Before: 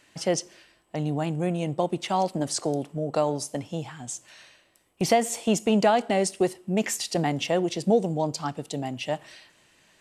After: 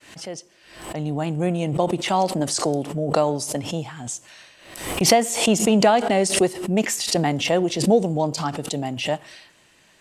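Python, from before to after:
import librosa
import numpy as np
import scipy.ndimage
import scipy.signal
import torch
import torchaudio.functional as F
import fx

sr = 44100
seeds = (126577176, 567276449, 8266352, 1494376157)

y = fx.fade_in_head(x, sr, length_s=1.47)
y = fx.pre_swell(y, sr, db_per_s=78.0)
y = y * librosa.db_to_amplitude(4.0)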